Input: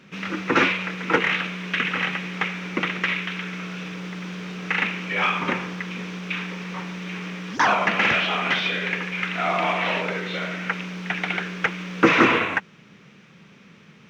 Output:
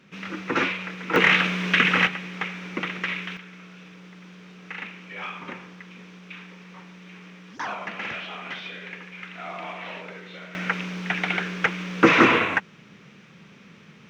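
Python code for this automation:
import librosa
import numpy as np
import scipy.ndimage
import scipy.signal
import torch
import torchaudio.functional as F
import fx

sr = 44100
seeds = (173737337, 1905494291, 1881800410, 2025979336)

y = fx.gain(x, sr, db=fx.steps((0.0, -5.0), (1.16, 5.0), (2.07, -4.5), (3.37, -12.5), (10.55, 0.5)))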